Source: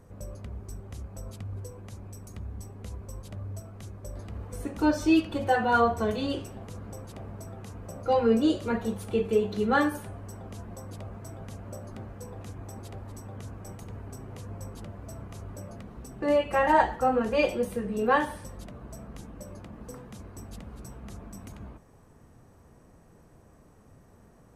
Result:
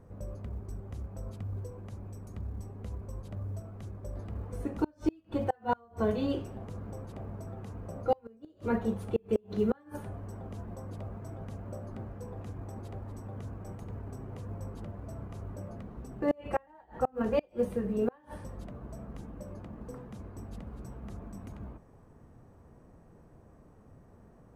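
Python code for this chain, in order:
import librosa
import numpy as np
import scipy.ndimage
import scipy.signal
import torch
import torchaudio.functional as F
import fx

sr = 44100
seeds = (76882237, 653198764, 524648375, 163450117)

y = fx.gate_flip(x, sr, shuts_db=-15.0, range_db=-34)
y = fx.high_shelf(y, sr, hz=2200.0, db=-12.0)
y = fx.quant_float(y, sr, bits=6)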